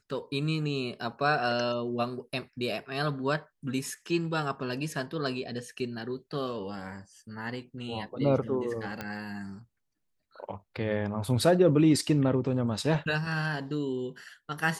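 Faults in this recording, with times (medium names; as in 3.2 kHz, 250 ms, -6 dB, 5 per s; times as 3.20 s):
9.01 s: pop -20 dBFS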